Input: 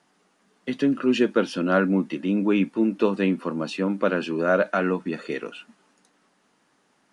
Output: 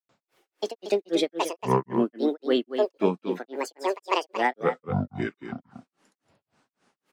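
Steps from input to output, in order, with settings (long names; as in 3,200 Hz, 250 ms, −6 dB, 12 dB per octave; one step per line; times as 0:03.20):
granular cloud 216 ms, grains 3.7 per second, pitch spread up and down by 12 semitones
single-tap delay 232 ms −9.5 dB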